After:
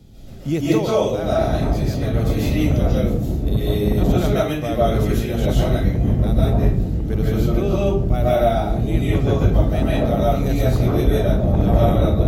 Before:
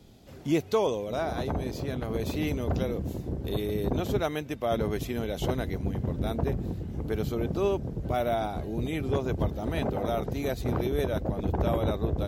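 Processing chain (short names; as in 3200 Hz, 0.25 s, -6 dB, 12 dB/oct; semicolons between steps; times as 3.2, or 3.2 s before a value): tone controls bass +10 dB, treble +2 dB; notch 1000 Hz, Q 11; reverb RT60 0.45 s, pre-delay 0.105 s, DRR -7 dB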